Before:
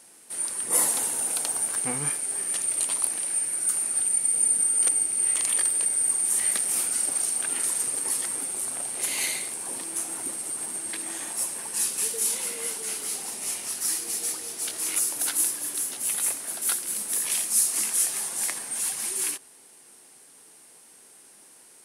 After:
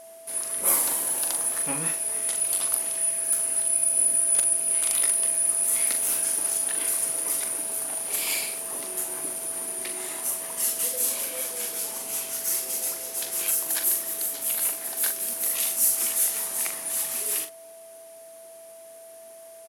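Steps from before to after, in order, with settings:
change of speed 1.11×
double-tracking delay 41 ms −7.5 dB
steady tone 660 Hz −44 dBFS

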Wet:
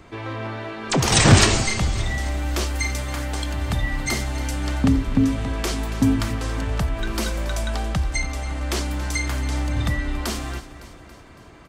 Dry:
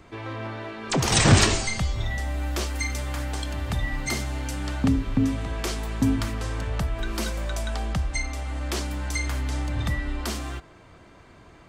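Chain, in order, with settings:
repeating echo 279 ms, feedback 57%, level −15 dB
level +3.5 dB

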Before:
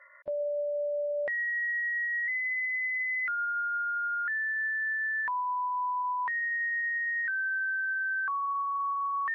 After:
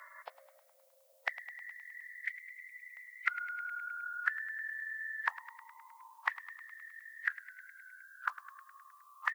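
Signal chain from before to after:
gate on every frequency bin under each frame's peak −10 dB weak
high-pass filter 710 Hz 24 dB per octave, from 0:01.71 1,500 Hz, from 0:02.97 610 Hz
spectral tilt +4 dB per octave
echo with shifted repeats 104 ms, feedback 64%, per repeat +41 Hz, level −16 dB
level +11 dB

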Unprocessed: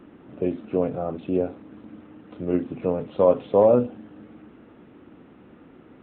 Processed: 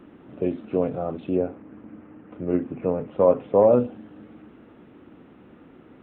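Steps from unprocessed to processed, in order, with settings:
0:01.35–0:03.72: low-pass filter 2,500 Hz 24 dB per octave

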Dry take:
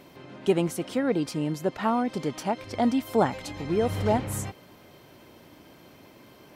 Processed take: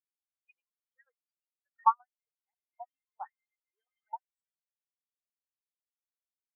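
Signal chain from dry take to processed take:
auto-filter high-pass saw up 7.5 Hz 970–2,500 Hz
every bin expanded away from the loudest bin 4 to 1

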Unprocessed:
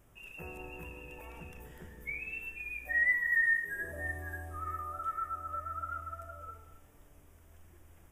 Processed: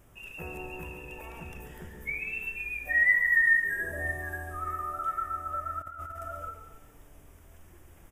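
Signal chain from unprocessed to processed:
single-tap delay 141 ms −9 dB
0:05.81–0:06.49: compressor whose output falls as the input rises −45 dBFS, ratio −1
level +5 dB

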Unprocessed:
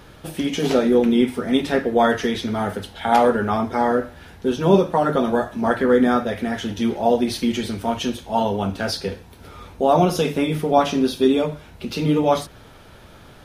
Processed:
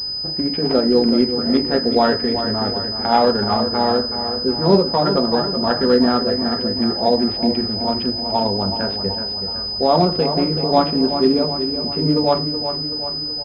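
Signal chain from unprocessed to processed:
adaptive Wiener filter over 15 samples
on a send: repeating echo 376 ms, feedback 56%, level −9 dB
on the sum: switching amplifier with a slow clock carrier 5,000 Hz
level +1 dB

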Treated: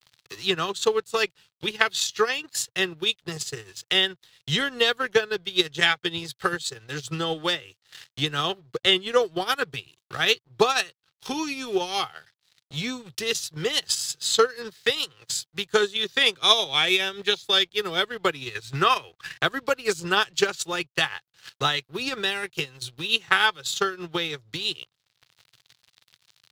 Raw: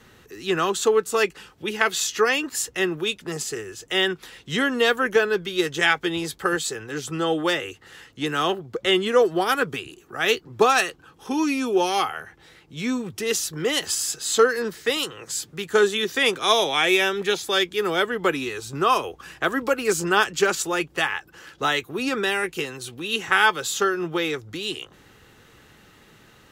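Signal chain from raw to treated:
0:18.55–0:19.38: parametric band 1,900 Hz +10.5 dB 0.81 octaves
dead-zone distortion −46.5 dBFS
transient designer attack +6 dB, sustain −10 dB
graphic EQ with 10 bands 125 Hz +12 dB, 250 Hz −6 dB, 4,000 Hz +10 dB
one half of a high-frequency compander encoder only
level −6 dB

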